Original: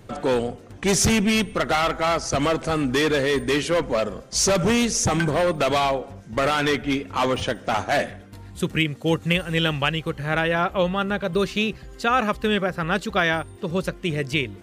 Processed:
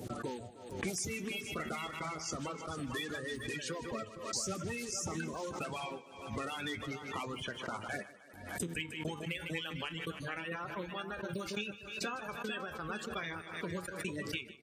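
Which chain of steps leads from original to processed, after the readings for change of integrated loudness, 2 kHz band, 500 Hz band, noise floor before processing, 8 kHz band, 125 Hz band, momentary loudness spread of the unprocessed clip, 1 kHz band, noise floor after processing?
-17.0 dB, -15.0 dB, -19.5 dB, -44 dBFS, -14.5 dB, -17.0 dB, 7 LU, -17.5 dB, -52 dBFS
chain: bin magnitudes rounded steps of 30 dB; high shelf 10000 Hz +7 dB; compressor 5:1, threshold -32 dBFS, peak gain reduction 14.5 dB; downsampling 32000 Hz; HPF 81 Hz; outdoor echo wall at 77 m, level -7 dB; dynamic EQ 680 Hz, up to -4 dB, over -44 dBFS, Q 1.3; gate -37 dBFS, range -29 dB; reverb removal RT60 1.4 s; on a send: thinning echo 0.153 s, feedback 56%, high-pass 200 Hz, level -16 dB; on the sum: flange 0.27 Hz, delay 8 ms, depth 5.6 ms, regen +66%; backwards sustainer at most 67 dB/s

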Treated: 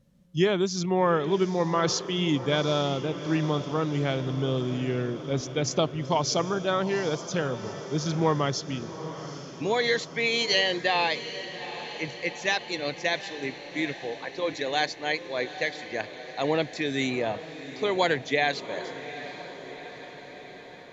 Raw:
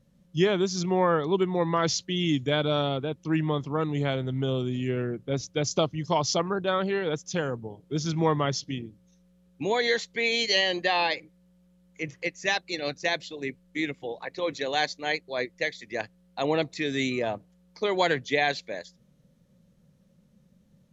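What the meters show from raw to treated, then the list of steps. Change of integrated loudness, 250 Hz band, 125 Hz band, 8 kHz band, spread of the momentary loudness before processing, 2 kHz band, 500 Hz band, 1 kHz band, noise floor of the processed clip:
0.0 dB, +0.5 dB, +0.5 dB, n/a, 11 LU, +0.5 dB, +0.5 dB, +0.5 dB, -44 dBFS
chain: diffused feedback echo 0.802 s, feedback 63%, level -12.5 dB

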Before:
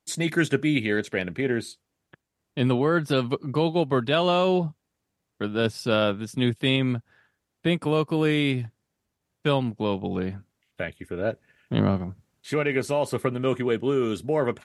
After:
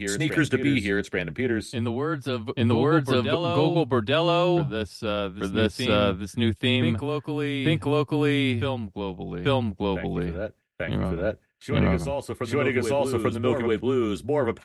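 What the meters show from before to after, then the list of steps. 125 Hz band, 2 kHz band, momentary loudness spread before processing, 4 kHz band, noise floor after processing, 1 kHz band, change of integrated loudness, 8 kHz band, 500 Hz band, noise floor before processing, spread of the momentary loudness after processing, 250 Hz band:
+2.0 dB, +1.0 dB, 11 LU, +1.0 dB, -54 dBFS, +1.0 dB, +0.5 dB, +0.5 dB, +0.5 dB, -81 dBFS, 8 LU, +1.0 dB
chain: frequency shift -21 Hz; reverse echo 0.84 s -5 dB; gate with hold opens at -42 dBFS

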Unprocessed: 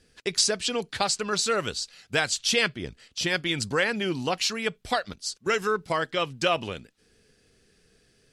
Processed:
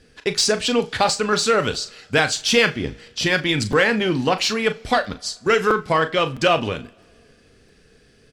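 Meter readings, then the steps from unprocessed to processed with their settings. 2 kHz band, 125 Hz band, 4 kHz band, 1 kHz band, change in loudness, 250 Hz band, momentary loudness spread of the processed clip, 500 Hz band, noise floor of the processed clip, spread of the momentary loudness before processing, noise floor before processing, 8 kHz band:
+7.0 dB, +9.0 dB, +5.0 dB, +8.0 dB, +6.5 dB, +9.0 dB, 8 LU, +8.5 dB, -54 dBFS, 8 LU, -64 dBFS, +2.5 dB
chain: high shelf 4800 Hz -9.5 dB; in parallel at -5 dB: soft clip -26 dBFS, distortion -9 dB; on the sum: doubler 38 ms -11.5 dB; two-slope reverb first 0.28 s, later 1.9 s, from -21 dB, DRR 12 dB; crackling interface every 0.66 s, samples 256, repeat, from 0.42; gain +5.5 dB

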